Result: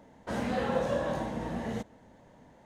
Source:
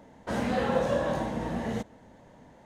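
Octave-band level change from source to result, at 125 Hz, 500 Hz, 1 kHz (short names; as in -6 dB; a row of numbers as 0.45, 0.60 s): -3.0, -3.0, -3.0 dB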